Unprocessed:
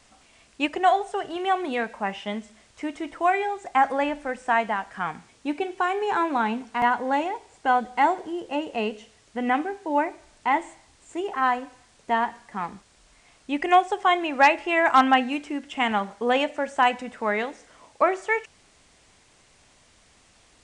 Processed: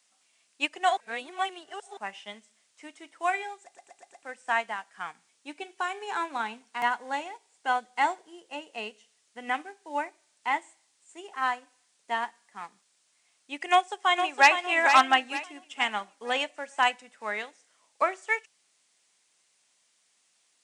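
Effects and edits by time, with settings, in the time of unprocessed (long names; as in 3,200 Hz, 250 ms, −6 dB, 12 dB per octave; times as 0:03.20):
0:00.97–0:01.97: reverse
0:03.63: stutter in place 0.12 s, 5 plays
0:13.69–0:14.52: delay throw 460 ms, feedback 45%, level −5 dB
whole clip: high-pass filter 130 Hz 24 dB per octave; spectral tilt +3.5 dB per octave; expander for the loud parts 1.5 to 1, over −43 dBFS; level −1.5 dB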